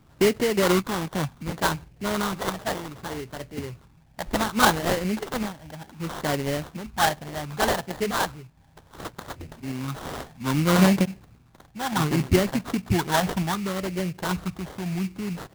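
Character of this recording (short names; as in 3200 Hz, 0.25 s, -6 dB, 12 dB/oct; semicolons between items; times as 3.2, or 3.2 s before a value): random-step tremolo; phasing stages 12, 0.66 Hz, lowest notch 410–1100 Hz; aliases and images of a low sample rate 2500 Hz, jitter 20%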